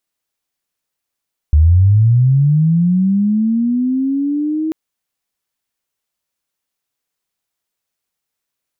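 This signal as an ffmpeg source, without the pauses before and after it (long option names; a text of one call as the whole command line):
ffmpeg -f lavfi -i "aevalsrc='pow(10,(-5.5-10*t/3.19)/20)*sin(2*PI*(72*t+248*t*t/(2*3.19)))':duration=3.19:sample_rate=44100" out.wav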